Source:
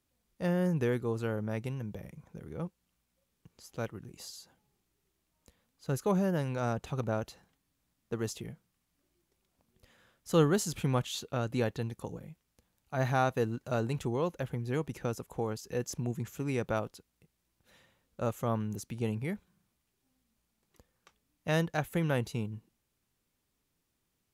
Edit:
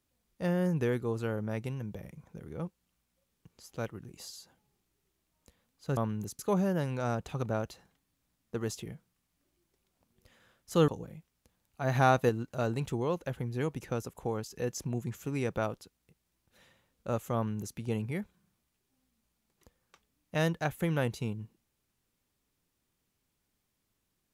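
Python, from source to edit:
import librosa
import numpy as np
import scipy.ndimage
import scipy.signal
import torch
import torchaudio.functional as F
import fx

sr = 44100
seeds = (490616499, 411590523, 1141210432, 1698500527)

y = fx.edit(x, sr, fx.cut(start_s=10.46, length_s=1.55),
    fx.clip_gain(start_s=13.08, length_s=0.34, db=4.0),
    fx.duplicate(start_s=18.48, length_s=0.42, to_s=5.97), tone=tone)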